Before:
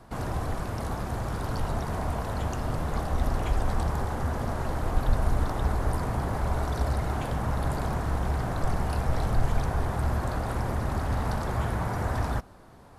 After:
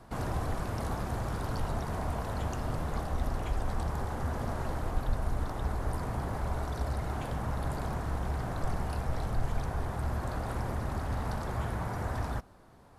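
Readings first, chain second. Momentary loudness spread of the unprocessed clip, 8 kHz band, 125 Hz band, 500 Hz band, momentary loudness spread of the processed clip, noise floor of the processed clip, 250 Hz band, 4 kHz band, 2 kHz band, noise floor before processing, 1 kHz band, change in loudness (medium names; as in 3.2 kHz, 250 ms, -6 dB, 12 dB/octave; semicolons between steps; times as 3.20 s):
4 LU, -4.5 dB, -5.0 dB, -5.0 dB, 1 LU, -52 dBFS, -5.0 dB, -5.0 dB, -5.0 dB, -50 dBFS, -5.0 dB, -5.0 dB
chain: gain riding 0.5 s; trim -5 dB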